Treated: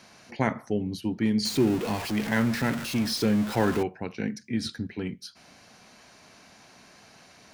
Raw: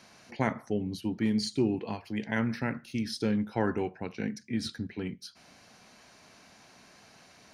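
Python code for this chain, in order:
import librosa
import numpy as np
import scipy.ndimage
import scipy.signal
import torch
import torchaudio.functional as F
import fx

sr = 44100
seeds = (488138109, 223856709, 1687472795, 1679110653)

y = fx.zero_step(x, sr, step_db=-32.5, at=(1.45, 3.83))
y = F.gain(torch.from_numpy(y), 3.0).numpy()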